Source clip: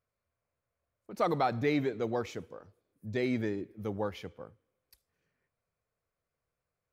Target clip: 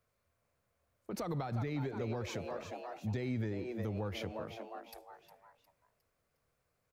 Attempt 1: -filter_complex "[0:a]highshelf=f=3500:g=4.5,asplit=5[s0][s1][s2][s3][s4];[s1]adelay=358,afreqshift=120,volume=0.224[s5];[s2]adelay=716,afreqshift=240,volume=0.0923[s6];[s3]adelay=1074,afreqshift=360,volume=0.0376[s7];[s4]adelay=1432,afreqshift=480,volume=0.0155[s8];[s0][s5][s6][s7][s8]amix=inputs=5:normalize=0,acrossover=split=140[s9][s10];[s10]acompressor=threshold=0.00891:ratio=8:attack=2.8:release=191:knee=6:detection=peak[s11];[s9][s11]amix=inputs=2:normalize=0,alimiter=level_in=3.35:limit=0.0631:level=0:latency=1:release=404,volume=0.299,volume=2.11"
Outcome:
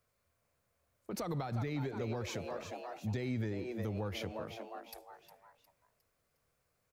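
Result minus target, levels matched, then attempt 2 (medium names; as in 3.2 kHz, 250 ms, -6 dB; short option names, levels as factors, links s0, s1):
8 kHz band +3.0 dB
-filter_complex "[0:a]asplit=5[s0][s1][s2][s3][s4];[s1]adelay=358,afreqshift=120,volume=0.224[s5];[s2]adelay=716,afreqshift=240,volume=0.0923[s6];[s3]adelay=1074,afreqshift=360,volume=0.0376[s7];[s4]adelay=1432,afreqshift=480,volume=0.0155[s8];[s0][s5][s6][s7][s8]amix=inputs=5:normalize=0,acrossover=split=140[s9][s10];[s10]acompressor=threshold=0.00891:ratio=8:attack=2.8:release=191:knee=6:detection=peak[s11];[s9][s11]amix=inputs=2:normalize=0,alimiter=level_in=3.35:limit=0.0631:level=0:latency=1:release=404,volume=0.299,volume=2.11"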